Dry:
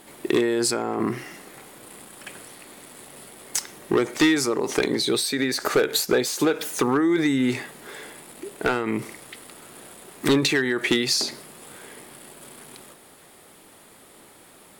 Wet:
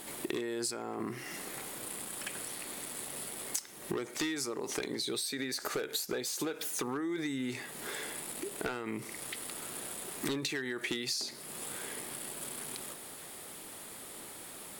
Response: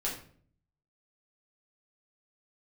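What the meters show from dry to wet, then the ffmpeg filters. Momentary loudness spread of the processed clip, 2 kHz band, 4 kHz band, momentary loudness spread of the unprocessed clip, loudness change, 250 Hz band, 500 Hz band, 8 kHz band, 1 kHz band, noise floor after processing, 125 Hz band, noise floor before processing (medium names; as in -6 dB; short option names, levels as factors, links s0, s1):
9 LU, -12.0 dB, -10.5 dB, 22 LU, -14.0 dB, -14.5 dB, -14.5 dB, -6.5 dB, -12.0 dB, -48 dBFS, -13.5 dB, -51 dBFS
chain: -af "highshelf=f=3500:g=6.5,acompressor=threshold=0.0158:ratio=4"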